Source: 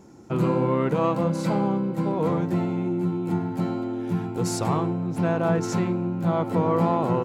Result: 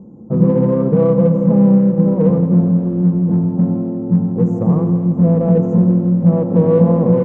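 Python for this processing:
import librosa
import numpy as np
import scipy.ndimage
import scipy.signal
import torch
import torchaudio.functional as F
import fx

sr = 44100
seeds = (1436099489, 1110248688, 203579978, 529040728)

p1 = fx.rattle_buzz(x, sr, strikes_db=-30.0, level_db=-27.0)
p2 = scipy.signal.sosfilt(scipy.signal.cheby1(4, 1.0, [1200.0, 6500.0], 'bandstop', fs=sr, output='sos'), p1)
p3 = fx.low_shelf(p2, sr, hz=460.0, db=11.0)
p4 = fx.small_body(p3, sr, hz=(200.0, 490.0), ring_ms=50, db=14)
p5 = np.clip(p4, -10.0 ** (-14.0 / 20.0), 10.0 ** (-14.0 / 20.0))
p6 = p4 + (p5 * librosa.db_to_amplitude(-11.0))
p7 = fx.air_absorb(p6, sr, metres=240.0)
p8 = p7 + fx.echo_heads(p7, sr, ms=83, heads='first and second', feedback_pct=64, wet_db=-14.5, dry=0)
y = p8 * librosa.db_to_amplitude(-6.5)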